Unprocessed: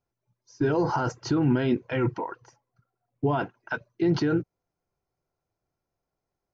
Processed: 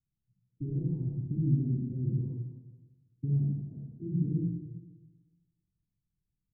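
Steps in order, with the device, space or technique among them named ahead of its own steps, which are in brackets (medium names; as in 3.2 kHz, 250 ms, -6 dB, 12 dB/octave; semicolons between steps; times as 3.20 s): club heard from the street (peak limiter -19.5 dBFS, peak gain reduction 6.5 dB; low-pass 210 Hz 24 dB/octave; reverberation RT60 1.2 s, pre-delay 35 ms, DRR -4 dB); trim -1.5 dB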